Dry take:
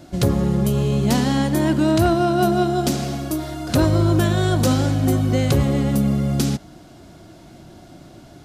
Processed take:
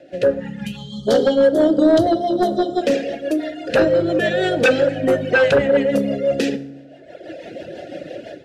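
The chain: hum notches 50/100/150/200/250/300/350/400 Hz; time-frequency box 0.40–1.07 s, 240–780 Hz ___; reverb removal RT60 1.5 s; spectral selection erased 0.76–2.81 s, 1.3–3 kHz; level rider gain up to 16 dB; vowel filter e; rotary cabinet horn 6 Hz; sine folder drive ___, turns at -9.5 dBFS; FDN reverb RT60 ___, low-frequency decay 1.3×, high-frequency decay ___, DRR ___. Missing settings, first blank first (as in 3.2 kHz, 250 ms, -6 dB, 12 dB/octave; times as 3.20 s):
-23 dB, 12 dB, 0.87 s, 0.7×, 12.5 dB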